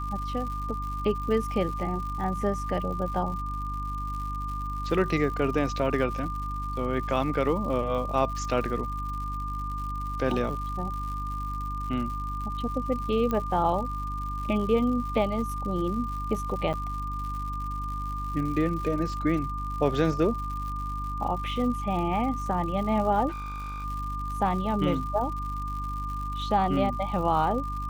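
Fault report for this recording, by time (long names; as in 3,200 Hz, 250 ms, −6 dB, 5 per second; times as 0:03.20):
surface crackle 150 per second −36 dBFS
mains hum 50 Hz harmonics 6 −34 dBFS
whistle 1,200 Hz −33 dBFS
0:13.31: click −16 dBFS
0:16.73–0:16.74: drop-out 7.6 ms
0:23.28–0:23.85: clipping −32 dBFS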